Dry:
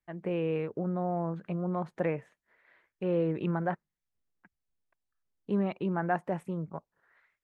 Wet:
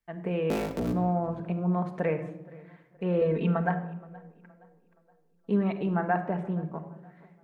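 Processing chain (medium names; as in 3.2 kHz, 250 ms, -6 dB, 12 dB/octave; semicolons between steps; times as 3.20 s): 0.50–0.93 s: cycle switcher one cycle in 3, inverted; 3.21–3.69 s: comb 4.4 ms, depth 80%; 6.10–6.65 s: distance through air 130 m; tape echo 471 ms, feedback 46%, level -21 dB, low-pass 2.4 kHz; simulated room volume 3200 m³, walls furnished, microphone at 1.6 m; trim +1.5 dB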